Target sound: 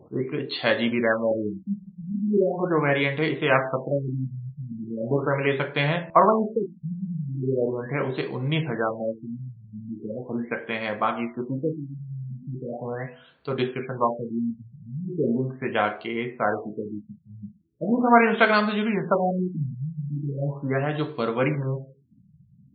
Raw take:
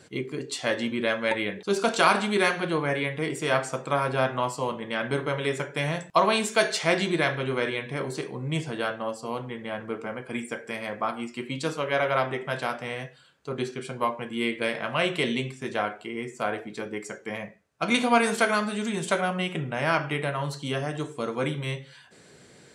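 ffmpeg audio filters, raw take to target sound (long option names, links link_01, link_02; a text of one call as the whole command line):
ffmpeg -i in.wav -af "bandreject=frequency=82.29:width_type=h:width=4,bandreject=frequency=164.58:width_type=h:width=4,bandreject=frequency=246.87:width_type=h:width=4,bandreject=frequency=329.16:width_type=h:width=4,bandreject=frequency=411.45:width_type=h:width=4,bandreject=frequency=493.74:width_type=h:width=4,bandreject=frequency=576.03:width_type=h:width=4,bandreject=frequency=658.32:width_type=h:width=4,bandreject=frequency=740.61:width_type=h:width=4,bandreject=frequency=822.9:width_type=h:width=4,bandreject=frequency=905.19:width_type=h:width=4,bandreject=frequency=987.48:width_type=h:width=4,bandreject=frequency=1069.77:width_type=h:width=4,bandreject=frequency=1152.06:width_type=h:width=4,bandreject=frequency=1234.35:width_type=h:width=4,afftfilt=real='re*lt(b*sr/1024,200*pow(4700/200,0.5+0.5*sin(2*PI*0.39*pts/sr)))':imag='im*lt(b*sr/1024,200*pow(4700/200,0.5+0.5*sin(2*PI*0.39*pts/sr)))':win_size=1024:overlap=0.75,volume=5dB" out.wav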